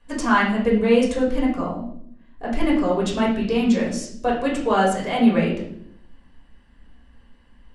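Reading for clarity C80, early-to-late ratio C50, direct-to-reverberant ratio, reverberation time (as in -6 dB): 9.0 dB, 5.0 dB, -4.5 dB, 0.65 s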